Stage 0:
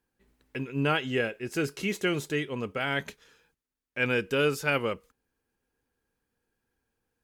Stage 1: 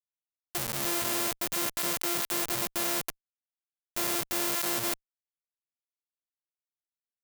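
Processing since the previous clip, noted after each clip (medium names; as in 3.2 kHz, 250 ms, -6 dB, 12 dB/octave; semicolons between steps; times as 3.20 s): sorted samples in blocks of 128 samples; Schmitt trigger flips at -36 dBFS; RIAA curve recording; trim +1.5 dB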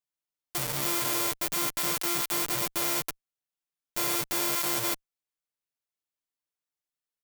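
comb 6.7 ms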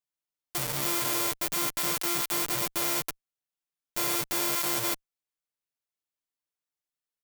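no audible change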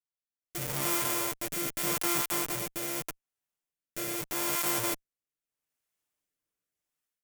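peaking EQ 4.2 kHz -5.5 dB 0.72 oct; level rider gain up to 15.5 dB; rotary cabinet horn 0.8 Hz; trim -6.5 dB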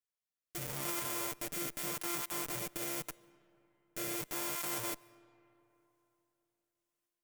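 peak limiter -20.5 dBFS, peak gain reduction 8.5 dB; on a send at -22.5 dB: reverberation RT60 3.3 s, pre-delay 105 ms; on the sum: trim -2 dB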